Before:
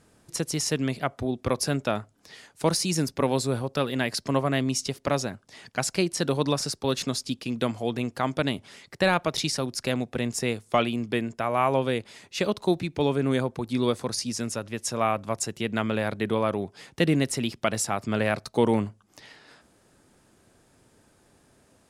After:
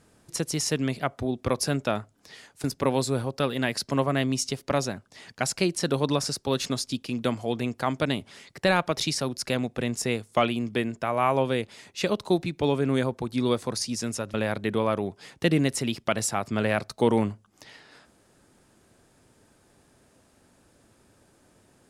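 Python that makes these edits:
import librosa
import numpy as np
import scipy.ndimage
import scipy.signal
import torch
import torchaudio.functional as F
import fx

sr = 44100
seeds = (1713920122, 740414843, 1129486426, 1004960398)

y = fx.edit(x, sr, fx.cut(start_s=2.64, length_s=0.37),
    fx.cut(start_s=14.71, length_s=1.19), tone=tone)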